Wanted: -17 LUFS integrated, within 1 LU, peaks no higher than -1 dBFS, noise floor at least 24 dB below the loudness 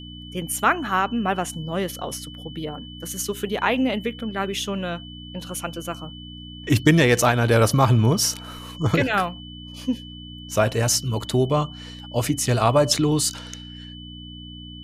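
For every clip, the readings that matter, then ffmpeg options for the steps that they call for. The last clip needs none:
hum 60 Hz; harmonics up to 300 Hz; hum level -36 dBFS; steady tone 3000 Hz; tone level -41 dBFS; loudness -22.5 LUFS; peak -5.5 dBFS; loudness target -17.0 LUFS
-> -af "bandreject=f=60:t=h:w=4,bandreject=f=120:t=h:w=4,bandreject=f=180:t=h:w=4,bandreject=f=240:t=h:w=4,bandreject=f=300:t=h:w=4"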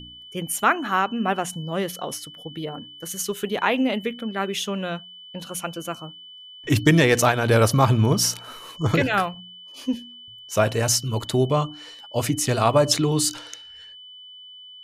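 hum none; steady tone 3000 Hz; tone level -41 dBFS
-> -af "bandreject=f=3k:w=30"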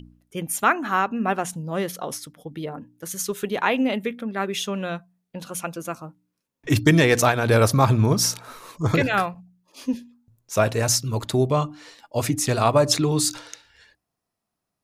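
steady tone none; loudness -22.5 LUFS; peak -5.0 dBFS; loudness target -17.0 LUFS
-> -af "volume=5.5dB,alimiter=limit=-1dB:level=0:latency=1"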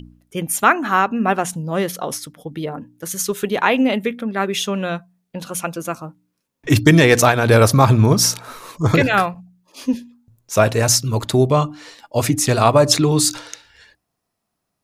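loudness -17.0 LUFS; peak -1.0 dBFS; noise floor -77 dBFS

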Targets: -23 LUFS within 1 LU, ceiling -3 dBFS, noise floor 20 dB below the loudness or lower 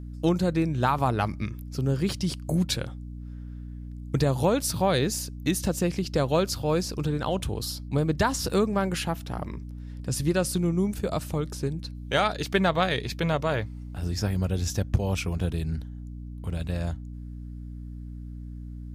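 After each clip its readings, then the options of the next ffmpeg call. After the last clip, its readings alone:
hum 60 Hz; harmonics up to 300 Hz; hum level -36 dBFS; loudness -27.5 LUFS; peak -10.5 dBFS; loudness target -23.0 LUFS
-> -af "bandreject=f=60:t=h:w=6,bandreject=f=120:t=h:w=6,bandreject=f=180:t=h:w=6,bandreject=f=240:t=h:w=6,bandreject=f=300:t=h:w=6"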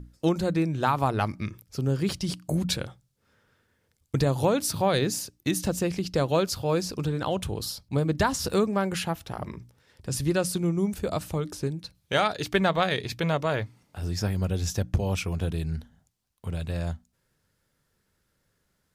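hum none; loudness -27.5 LUFS; peak -9.5 dBFS; loudness target -23.0 LUFS
-> -af "volume=4.5dB"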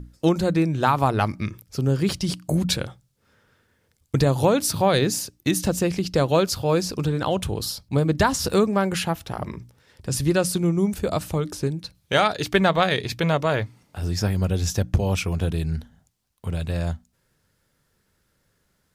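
loudness -23.0 LUFS; peak -5.0 dBFS; noise floor -69 dBFS

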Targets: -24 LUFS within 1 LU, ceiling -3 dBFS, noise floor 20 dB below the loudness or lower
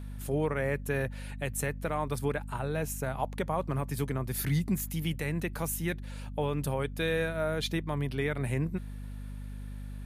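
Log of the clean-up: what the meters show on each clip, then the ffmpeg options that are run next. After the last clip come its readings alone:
hum 50 Hz; harmonics up to 250 Hz; hum level -37 dBFS; loudness -32.5 LUFS; peak -18.0 dBFS; loudness target -24.0 LUFS
-> -af "bandreject=f=50:t=h:w=4,bandreject=f=100:t=h:w=4,bandreject=f=150:t=h:w=4,bandreject=f=200:t=h:w=4,bandreject=f=250:t=h:w=4"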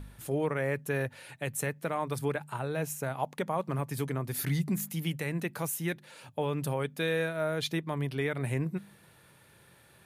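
hum none; loudness -33.0 LUFS; peak -18.5 dBFS; loudness target -24.0 LUFS
-> -af "volume=9dB"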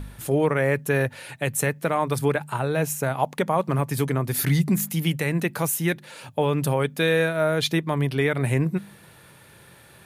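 loudness -24.0 LUFS; peak -9.5 dBFS; noise floor -51 dBFS

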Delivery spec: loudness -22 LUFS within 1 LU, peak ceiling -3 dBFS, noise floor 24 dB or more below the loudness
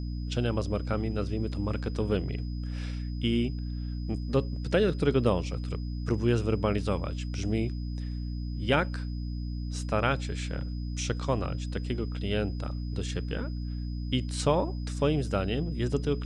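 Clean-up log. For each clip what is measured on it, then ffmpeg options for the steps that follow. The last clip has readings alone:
hum 60 Hz; harmonics up to 300 Hz; hum level -31 dBFS; steady tone 5000 Hz; tone level -54 dBFS; loudness -30.5 LUFS; peak -10.0 dBFS; loudness target -22.0 LUFS
-> -af "bandreject=f=60:t=h:w=4,bandreject=f=120:t=h:w=4,bandreject=f=180:t=h:w=4,bandreject=f=240:t=h:w=4,bandreject=f=300:t=h:w=4"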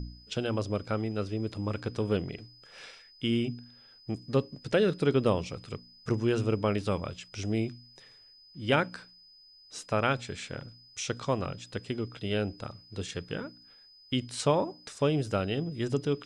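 hum none; steady tone 5000 Hz; tone level -54 dBFS
-> -af "bandreject=f=5k:w=30"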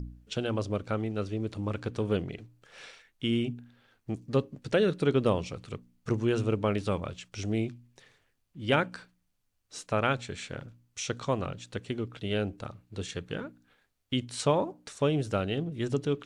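steady tone none; loudness -31.5 LUFS; peak -10.5 dBFS; loudness target -22.0 LUFS
-> -af "volume=9.5dB,alimiter=limit=-3dB:level=0:latency=1"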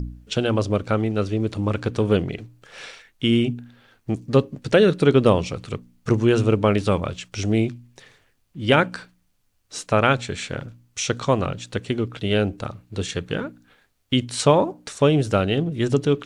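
loudness -22.0 LUFS; peak -3.0 dBFS; noise floor -65 dBFS

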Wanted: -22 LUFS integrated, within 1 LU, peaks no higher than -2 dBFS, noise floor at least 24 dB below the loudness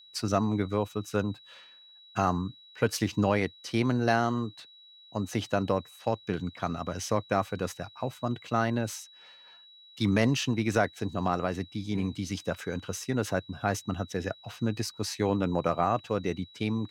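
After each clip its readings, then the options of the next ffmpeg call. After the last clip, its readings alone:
steady tone 3900 Hz; tone level -52 dBFS; loudness -30.5 LUFS; peak -12.0 dBFS; loudness target -22.0 LUFS
-> -af "bandreject=f=3.9k:w=30"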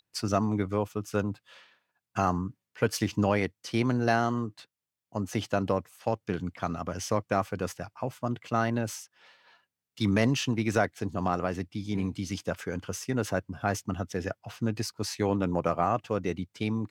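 steady tone none; loudness -30.5 LUFS; peak -12.0 dBFS; loudness target -22.0 LUFS
-> -af "volume=8.5dB"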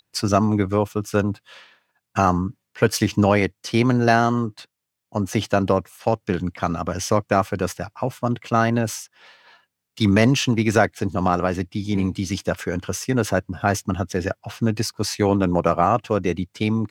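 loudness -22.0 LUFS; peak -3.5 dBFS; noise floor -80 dBFS

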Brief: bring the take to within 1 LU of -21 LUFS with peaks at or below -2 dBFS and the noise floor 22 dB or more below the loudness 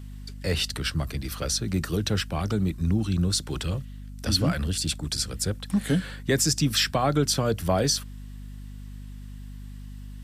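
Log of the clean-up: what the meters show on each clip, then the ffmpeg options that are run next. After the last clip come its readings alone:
hum 50 Hz; harmonics up to 250 Hz; hum level -38 dBFS; loudness -26.0 LUFS; peak -10.5 dBFS; loudness target -21.0 LUFS
-> -af "bandreject=f=50:t=h:w=4,bandreject=f=100:t=h:w=4,bandreject=f=150:t=h:w=4,bandreject=f=200:t=h:w=4,bandreject=f=250:t=h:w=4"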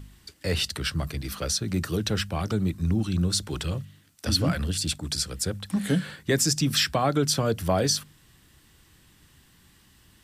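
hum none; loudness -26.5 LUFS; peak -10.0 dBFS; loudness target -21.0 LUFS
-> -af "volume=5.5dB"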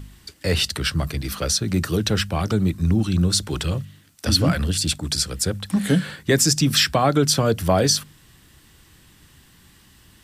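loudness -21.0 LUFS; peak -4.5 dBFS; noise floor -53 dBFS

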